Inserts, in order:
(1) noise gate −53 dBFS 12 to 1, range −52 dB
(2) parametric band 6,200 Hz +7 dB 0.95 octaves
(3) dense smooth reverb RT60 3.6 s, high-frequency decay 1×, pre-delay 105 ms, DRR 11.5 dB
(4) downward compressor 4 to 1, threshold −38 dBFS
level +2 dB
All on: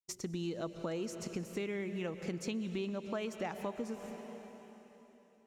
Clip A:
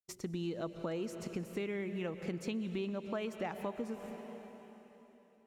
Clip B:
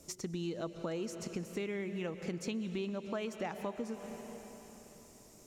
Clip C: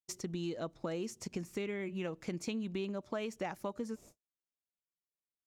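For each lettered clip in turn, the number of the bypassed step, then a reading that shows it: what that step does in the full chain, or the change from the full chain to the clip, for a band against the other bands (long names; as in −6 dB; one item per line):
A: 2, 8 kHz band −5.5 dB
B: 1, change in momentary loudness spread +3 LU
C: 3, change in momentary loudness spread −9 LU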